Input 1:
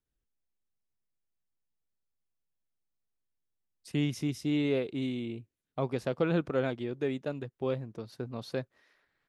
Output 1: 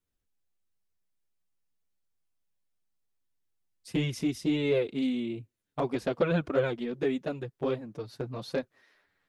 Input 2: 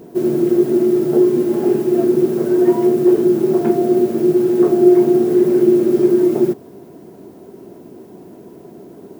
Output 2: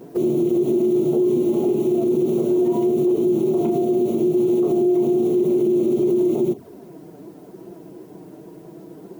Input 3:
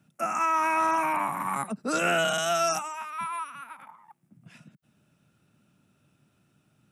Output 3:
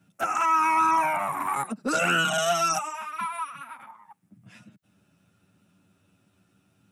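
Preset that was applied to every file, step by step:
limiter -13 dBFS; envelope flanger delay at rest 10.9 ms, full sweep at -18 dBFS; normalise peaks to -12 dBFS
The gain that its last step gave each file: +5.5, +1.0, +5.0 dB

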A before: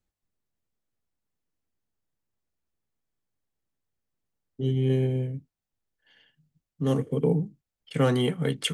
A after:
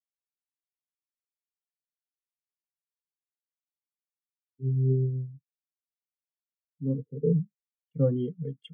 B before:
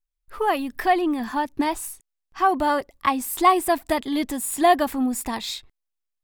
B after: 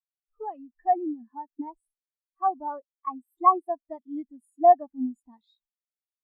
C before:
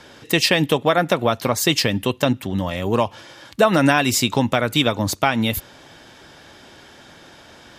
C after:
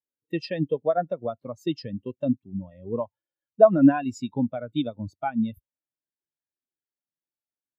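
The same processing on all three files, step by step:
spectral expander 2.5:1; gain -2 dB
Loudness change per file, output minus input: -2.0, -2.5, -6.5 LU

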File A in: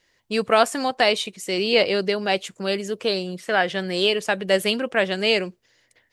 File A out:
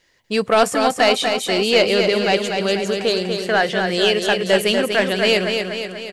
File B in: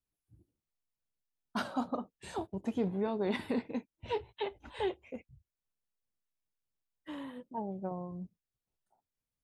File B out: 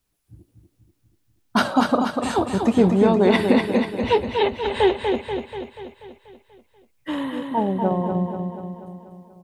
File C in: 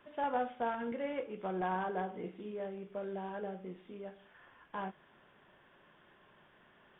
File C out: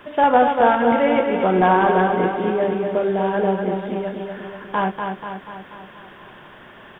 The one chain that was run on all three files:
soft clip -10 dBFS; feedback echo 0.242 s, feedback 57%, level -5.5 dB; normalise peaks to -3 dBFS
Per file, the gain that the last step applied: +4.0, +16.0, +19.0 dB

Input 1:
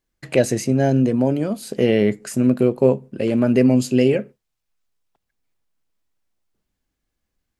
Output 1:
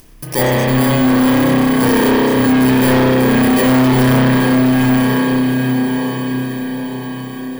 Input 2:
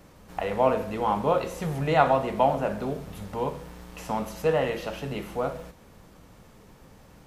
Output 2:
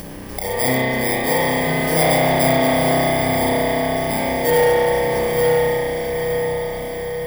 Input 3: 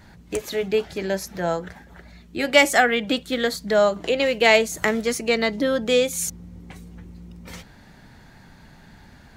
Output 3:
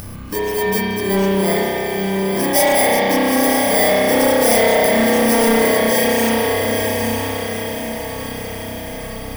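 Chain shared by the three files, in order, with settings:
FFT order left unsorted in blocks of 32 samples; diffused feedback echo 0.92 s, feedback 47%, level -4.5 dB; spring tank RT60 2.9 s, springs 31 ms, chirp 55 ms, DRR -9 dB; upward compressor, threshold -22 dBFS; soft clip -10 dBFS; normalise peaks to -9 dBFS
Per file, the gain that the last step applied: +1.0, +1.0, +1.0 dB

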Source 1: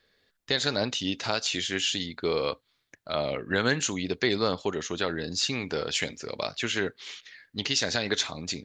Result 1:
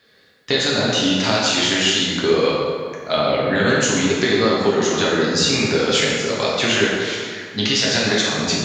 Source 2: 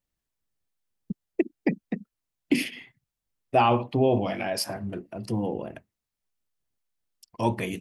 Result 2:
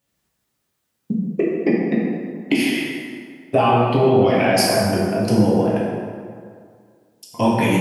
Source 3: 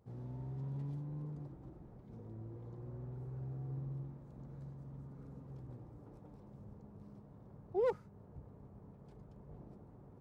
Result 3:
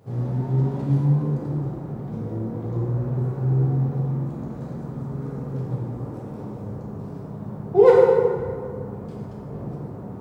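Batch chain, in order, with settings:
compressor 6:1, threshold -28 dBFS; HPF 100 Hz 12 dB/oct; plate-style reverb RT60 2.1 s, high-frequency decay 0.6×, DRR -5.5 dB; normalise peaks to -3 dBFS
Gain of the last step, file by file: +9.0, +9.5, +15.0 dB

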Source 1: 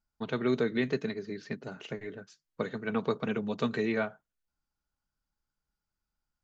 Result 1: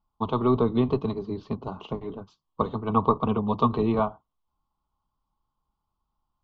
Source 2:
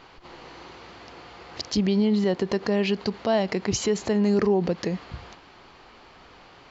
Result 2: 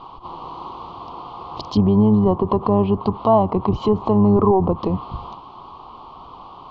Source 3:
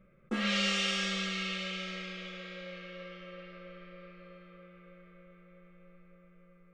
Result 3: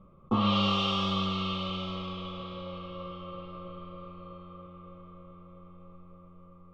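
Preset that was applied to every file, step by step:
octaver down 1 oct, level -6 dB; EQ curve 320 Hz 0 dB, 560 Hz -3 dB, 1100 Hz +13 dB, 1700 Hz -27 dB, 3200 Hz -2 dB, 6900 Hz -20 dB; treble ducked by the level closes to 1500 Hz, closed at -20.5 dBFS; gain +6.5 dB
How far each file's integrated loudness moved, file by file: +6.5, +6.5, +2.5 LU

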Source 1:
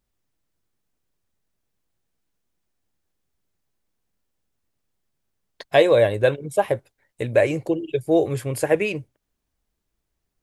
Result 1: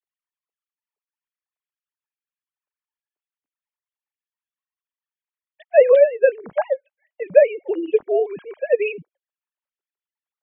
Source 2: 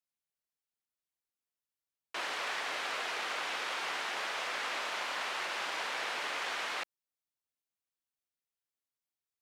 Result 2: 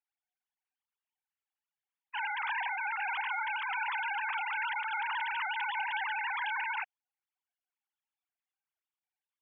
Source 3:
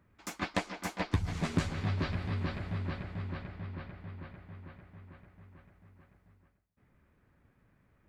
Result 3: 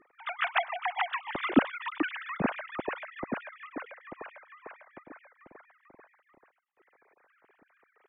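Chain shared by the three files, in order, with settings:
sine-wave speech; gain +2.5 dB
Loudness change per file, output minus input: +2.5, +2.0, +4.5 LU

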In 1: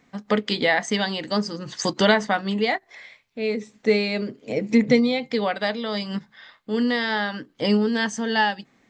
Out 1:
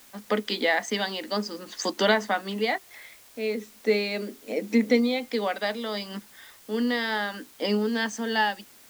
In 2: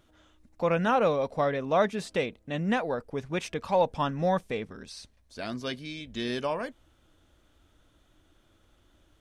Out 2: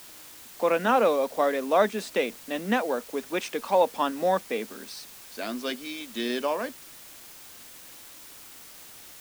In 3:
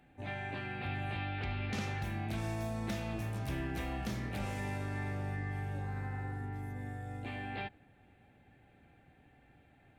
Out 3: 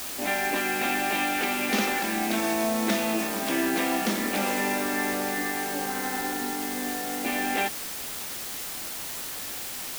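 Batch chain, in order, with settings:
steep high-pass 210 Hz 48 dB/oct; in parallel at -11.5 dB: requantised 6-bit, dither triangular; on the sum: match loudness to -27 LUFS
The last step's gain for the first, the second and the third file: -5.5, +0.5, +12.5 dB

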